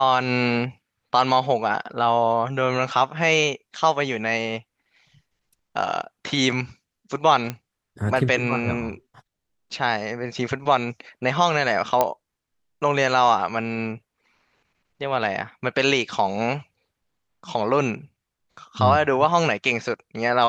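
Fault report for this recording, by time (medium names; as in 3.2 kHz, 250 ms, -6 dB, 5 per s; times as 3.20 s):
7.50 s: pop -13 dBFS
12.01 s: pop -5 dBFS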